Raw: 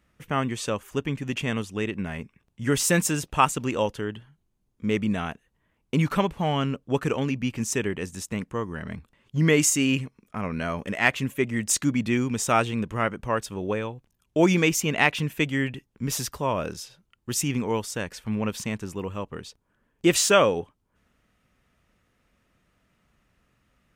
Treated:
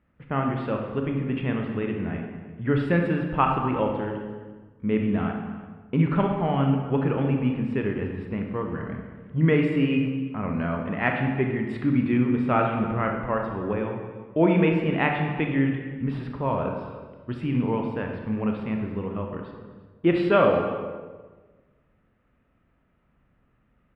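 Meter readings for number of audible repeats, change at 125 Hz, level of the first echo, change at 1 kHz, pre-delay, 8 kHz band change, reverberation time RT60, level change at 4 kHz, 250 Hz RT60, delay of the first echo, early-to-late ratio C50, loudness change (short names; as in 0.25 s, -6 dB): 2, +2.5 dB, -18.5 dB, +0.5 dB, 23 ms, under -40 dB, 1.4 s, -11.0 dB, 1.6 s, 0.254 s, 3.5 dB, 0.0 dB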